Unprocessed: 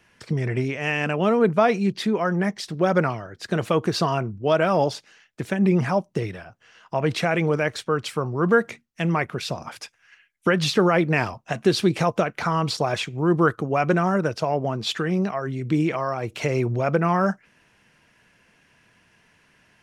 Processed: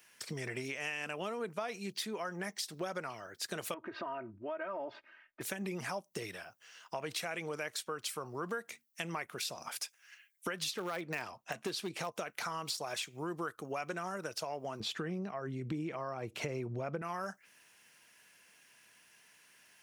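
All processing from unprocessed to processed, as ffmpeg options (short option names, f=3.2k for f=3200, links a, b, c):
-filter_complex "[0:a]asettb=1/sr,asplit=3[a][b][c];[a]atrim=end=3.744[d];[b]atrim=start=3.74:end=5.41,asetpts=PTS-STARTPTS,afade=t=in:d=0.004:c=qsin,afade=t=out:st=1.666:d=0.004:c=qsin,lowpass=f=2.1k:w=0.5412,lowpass=f=2.1k:w=1.3066,aecho=1:1:3.2:0.95,atrim=end_sample=73647,acompressor=threshold=-32dB:ratio=2:attack=3.2:release=140:knee=1:detection=peak[e];[c]atrim=start=5.406[f];[d][e]acrossfade=d=0.004:c1=hsin:c2=qsin[g];[g][f]acrossfade=d=0.004:c1=qsin:c2=hsin,asettb=1/sr,asplit=3[h][i][j];[h]atrim=end=10.714[k];[i]atrim=start=10.71:end=12.12,asetpts=PTS-STARTPTS,afade=t=in:d=0.004:c=qsin,afade=t=out:st=1.406:d=0.004:c=qsin,aemphasis=mode=reproduction:type=cd,volume=10.5dB,asoftclip=hard,volume=-10.5dB[l];[j]atrim=start=12.116[m];[k][l]acrossfade=d=0.004:c1=hsin:c2=qsin[n];[n][m]acrossfade=d=0.004:c1=qsin:c2=hsin,asettb=1/sr,asplit=3[o][p][q];[o]atrim=end=14.804[r];[p]atrim=start=14.8:end=17.02,asetpts=PTS-STARTPTS,afade=t=in:d=0.004:c=qsin,afade=t=out:st=2.216:d=0.004:c=qsin,lowpass=f=2.1k:p=1,lowshelf=f=360:g=12[s];[q]atrim=start=17.016[t];[r][s]acrossfade=d=0.004:c1=hsin:c2=qsin[u];[u][t]acrossfade=d=0.004:c1=qsin:c2=hsin,aemphasis=mode=production:type=riaa,acompressor=threshold=-29dB:ratio=5,volume=-7dB"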